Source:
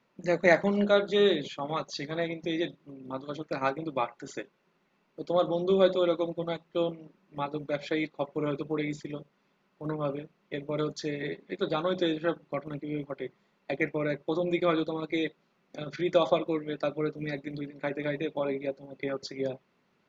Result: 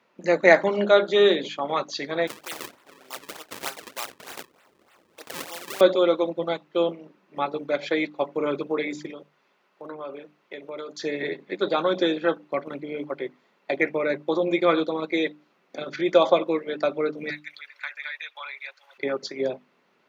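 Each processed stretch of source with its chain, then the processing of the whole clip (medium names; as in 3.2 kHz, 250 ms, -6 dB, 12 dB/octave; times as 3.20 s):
2.27–5.81 s: Bessel high-pass 1.1 kHz + decimation with a swept rate 35×, swing 160% 3.3 Hz + spectrum-flattening compressor 2:1
9.10–11.00 s: bass shelf 210 Hz -10.5 dB + compression 2.5:1, threshold -41 dBFS
17.30–18.98 s: high-pass 1.3 kHz 24 dB/octave + three bands compressed up and down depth 70%
whole clip: Bessel high-pass 170 Hz; tone controls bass -6 dB, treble -3 dB; hum notches 50/100/150/200/250/300 Hz; trim +7 dB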